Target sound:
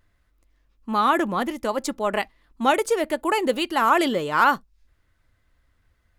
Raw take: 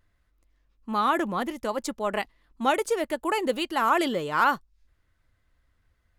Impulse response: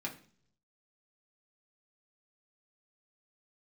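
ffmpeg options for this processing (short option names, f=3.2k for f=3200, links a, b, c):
-filter_complex "[0:a]asplit=2[a][b];[1:a]atrim=start_sample=2205,atrim=end_sample=3087[c];[b][c]afir=irnorm=-1:irlink=0,volume=-22dB[d];[a][d]amix=inputs=2:normalize=0,volume=3.5dB"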